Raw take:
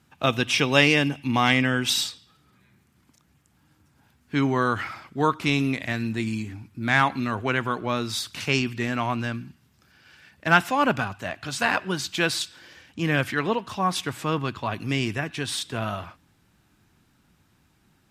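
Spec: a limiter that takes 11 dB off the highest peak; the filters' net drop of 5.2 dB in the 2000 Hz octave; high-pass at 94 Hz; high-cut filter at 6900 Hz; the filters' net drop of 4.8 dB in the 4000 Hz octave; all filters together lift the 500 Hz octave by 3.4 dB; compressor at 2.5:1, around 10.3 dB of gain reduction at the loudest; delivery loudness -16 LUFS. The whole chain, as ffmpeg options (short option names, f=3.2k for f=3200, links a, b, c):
-af "highpass=94,lowpass=6.9k,equalizer=f=500:t=o:g=4.5,equalizer=f=2k:t=o:g=-6.5,equalizer=f=4k:t=o:g=-3.5,acompressor=threshold=-29dB:ratio=2.5,volume=20dB,alimiter=limit=-5dB:level=0:latency=1"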